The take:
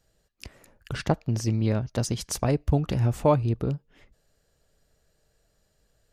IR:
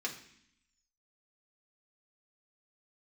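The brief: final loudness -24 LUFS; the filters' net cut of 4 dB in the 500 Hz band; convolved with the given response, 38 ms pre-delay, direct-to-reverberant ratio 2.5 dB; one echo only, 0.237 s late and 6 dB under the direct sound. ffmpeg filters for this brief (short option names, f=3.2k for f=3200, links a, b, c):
-filter_complex "[0:a]equalizer=f=500:t=o:g=-5,aecho=1:1:237:0.501,asplit=2[a][b];[1:a]atrim=start_sample=2205,adelay=38[c];[b][c]afir=irnorm=-1:irlink=0,volume=-5dB[d];[a][d]amix=inputs=2:normalize=0,volume=1.5dB"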